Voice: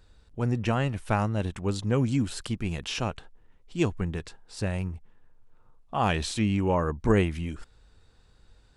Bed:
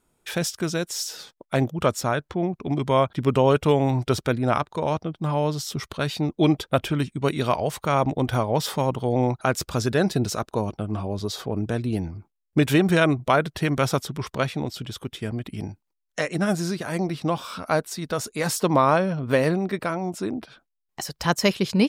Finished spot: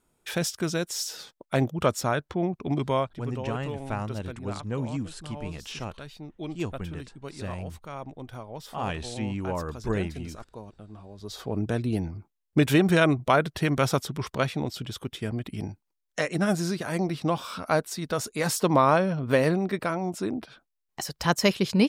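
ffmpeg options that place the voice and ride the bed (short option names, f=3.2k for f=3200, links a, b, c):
-filter_complex "[0:a]adelay=2800,volume=-6dB[a];[1:a]volume=13.5dB,afade=t=out:st=2.78:d=0.44:silence=0.177828,afade=t=in:st=11.17:d=0.42:silence=0.16788[b];[a][b]amix=inputs=2:normalize=0"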